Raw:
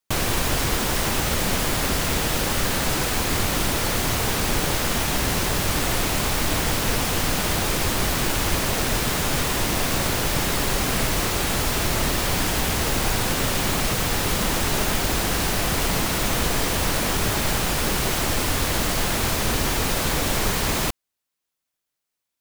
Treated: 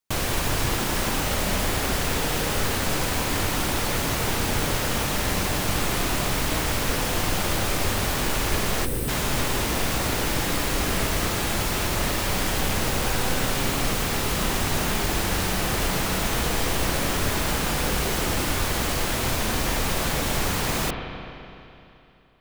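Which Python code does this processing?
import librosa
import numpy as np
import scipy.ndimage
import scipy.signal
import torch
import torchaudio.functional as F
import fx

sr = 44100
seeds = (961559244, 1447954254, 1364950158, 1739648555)

y = fx.rev_spring(x, sr, rt60_s=2.9, pass_ms=(32, 42), chirp_ms=60, drr_db=4.0)
y = fx.spec_box(y, sr, start_s=8.85, length_s=0.23, low_hz=580.0, high_hz=7800.0, gain_db=-11)
y = F.gain(torch.from_numpy(y), -3.0).numpy()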